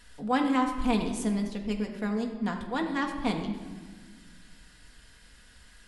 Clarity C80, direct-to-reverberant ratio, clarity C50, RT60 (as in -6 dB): 8.5 dB, 2.0 dB, 7.0 dB, 1.5 s